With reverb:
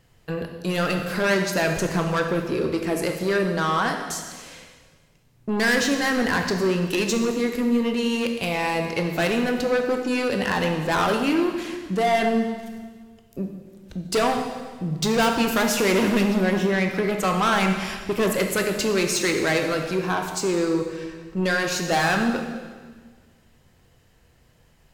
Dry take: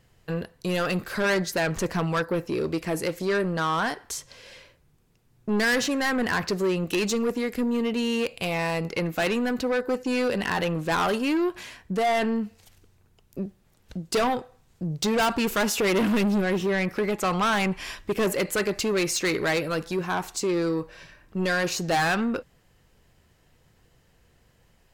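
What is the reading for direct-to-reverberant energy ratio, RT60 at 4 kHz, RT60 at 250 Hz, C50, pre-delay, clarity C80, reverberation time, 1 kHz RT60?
4.0 dB, 1.5 s, 1.7 s, 5.5 dB, 15 ms, 7.0 dB, 1.6 s, 1.5 s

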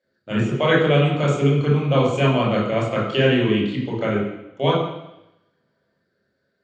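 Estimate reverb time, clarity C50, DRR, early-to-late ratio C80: 0.90 s, 3.0 dB, -4.5 dB, 6.0 dB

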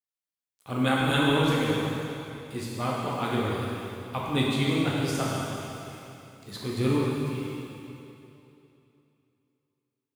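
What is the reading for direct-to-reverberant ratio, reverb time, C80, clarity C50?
-5.5 dB, 2.9 s, -0.5 dB, -2.0 dB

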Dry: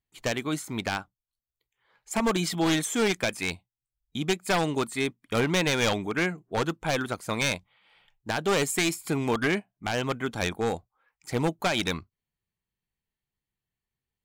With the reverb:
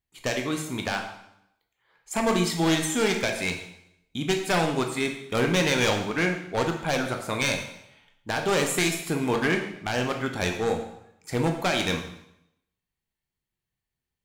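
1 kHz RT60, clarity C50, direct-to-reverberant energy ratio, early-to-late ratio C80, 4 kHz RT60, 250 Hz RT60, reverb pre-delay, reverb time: 0.80 s, 6.5 dB, 2.5 dB, 9.5 dB, 0.75 s, 0.80 s, 7 ms, 0.80 s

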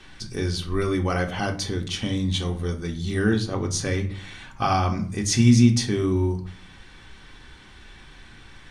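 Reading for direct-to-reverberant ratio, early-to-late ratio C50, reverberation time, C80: 1.5 dB, 13.0 dB, 0.50 s, 17.0 dB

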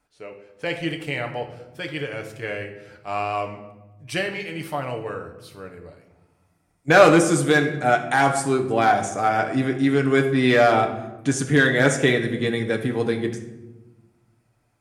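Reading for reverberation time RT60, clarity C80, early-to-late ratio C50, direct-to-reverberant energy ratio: 1.1 s, 11.5 dB, 9.0 dB, 3.0 dB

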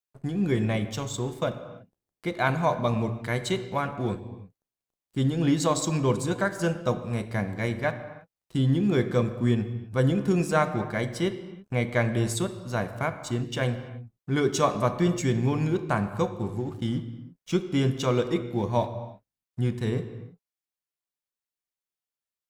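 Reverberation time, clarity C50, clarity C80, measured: not exponential, 11.0 dB, 12.0 dB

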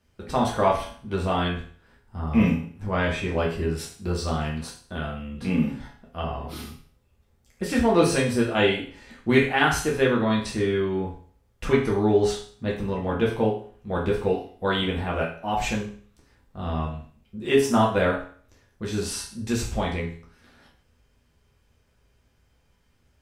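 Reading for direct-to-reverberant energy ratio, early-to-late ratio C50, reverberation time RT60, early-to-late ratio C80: -3.5 dB, 6.0 dB, 0.50 s, 10.5 dB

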